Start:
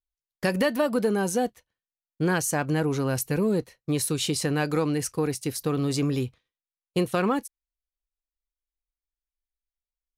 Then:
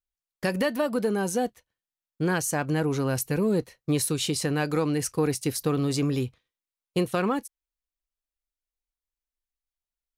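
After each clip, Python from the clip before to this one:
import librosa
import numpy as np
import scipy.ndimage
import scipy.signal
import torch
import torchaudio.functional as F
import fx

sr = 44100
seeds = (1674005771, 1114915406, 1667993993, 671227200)

y = fx.rider(x, sr, range_db=10, speed_s=0.5)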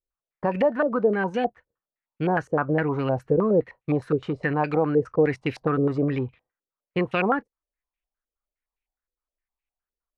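y = fx.filter_held_lowpass(x, sr, hz=9.7, low_hz=470.0, high_hz=2500.0)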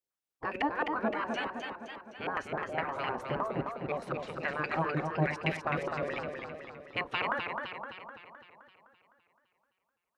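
y = fx.spec_gate(x, sr, threshold_db=-10, keep='weak')
y = fx.echo_warbled(y, sr, ms=257, feedback_pct=56, rate_hz=2.8, cents=106, wet_db=-5)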